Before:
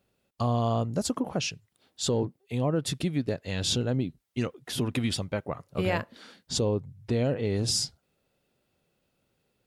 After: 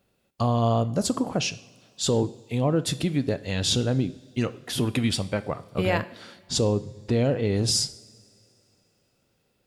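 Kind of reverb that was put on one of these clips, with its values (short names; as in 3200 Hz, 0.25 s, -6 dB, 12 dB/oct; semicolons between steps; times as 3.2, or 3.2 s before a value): two-slope reverb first 0.61 s, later 2.9 s, from -18 dB, DRR 13 dB; gain +3.5 dB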